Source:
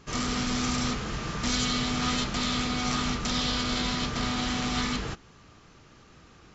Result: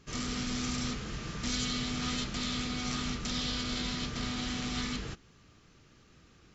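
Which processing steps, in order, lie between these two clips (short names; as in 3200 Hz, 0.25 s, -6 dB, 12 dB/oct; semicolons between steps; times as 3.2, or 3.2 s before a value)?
bell 880 Hz -6.5 dB 1.4 oct; gain -5 dB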